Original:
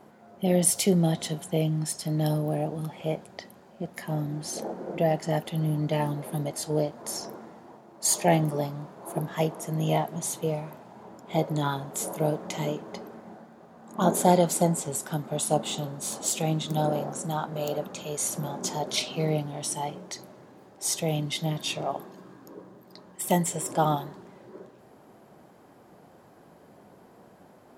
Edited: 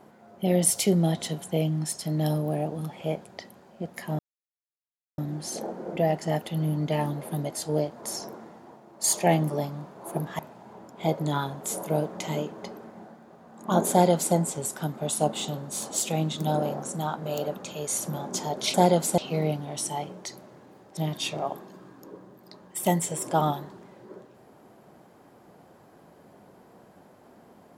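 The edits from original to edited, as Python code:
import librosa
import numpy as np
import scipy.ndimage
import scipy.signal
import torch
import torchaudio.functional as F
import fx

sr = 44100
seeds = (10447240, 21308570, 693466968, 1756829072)

y = fx.edit(x, sr, fx.insert_silence(at_s=4.19, length_s=0.99),
    fx.cut(start_s=9.4, length_s=1.29),
    fx.duplicate(start_s=14.21, length_s=0.44, to_s=19.04),
    fx.cut(start_s=20.83, length_s=0.58), tone=tone)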